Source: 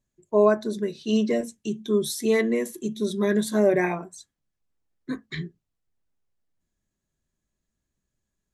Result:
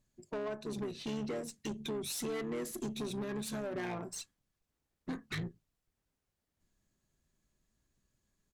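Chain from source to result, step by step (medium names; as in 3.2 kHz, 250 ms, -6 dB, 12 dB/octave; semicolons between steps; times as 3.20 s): dynamic bell 230 Hz, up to -4 dB, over -39 dBFS, Q 6.1; compression 16:1, threshold -32 dBFS, peak gain reduction 19.5 dB; saturation -36 dBFS, distortion -10 dB; harmony voices -7 st -9 dB; Chebyshev shaper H 6 -24 dB, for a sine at -31 dBFS; trim +2 dB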